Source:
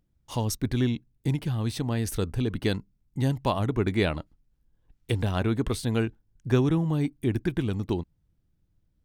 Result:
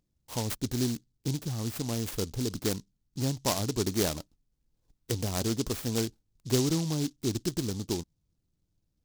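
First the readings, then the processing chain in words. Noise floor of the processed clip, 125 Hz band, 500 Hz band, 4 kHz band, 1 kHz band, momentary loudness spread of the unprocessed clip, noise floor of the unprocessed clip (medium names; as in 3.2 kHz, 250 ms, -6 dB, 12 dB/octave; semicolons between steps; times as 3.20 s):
-78 dBFS, -6.0 dB, -3.5 dB, +2.5 dB, -5.0 dB, 7 LU, -71 dBFS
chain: bass shelf 150 Hz -6.5 dB; delay time shaken by noise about 5.1 kHz, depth 0.16 ms; trim -2 dB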